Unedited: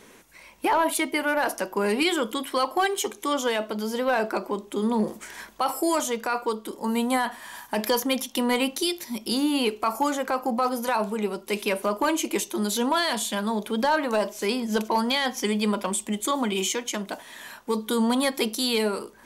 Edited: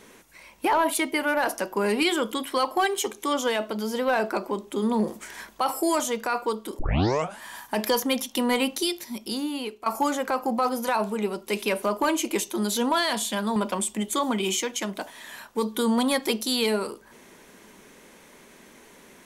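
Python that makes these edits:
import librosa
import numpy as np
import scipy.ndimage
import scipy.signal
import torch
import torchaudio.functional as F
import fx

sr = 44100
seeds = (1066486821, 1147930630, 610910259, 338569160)

y = fx.edit(x, sr, fx.tape_start(start_s=6.79, length_s=0.63),
    fx.fade_out_to(start_s=8.78, length_s=1.08, floor_db=-13.0),
    fx.cut(start_s=13.56, length_s=2.12), tone=tone)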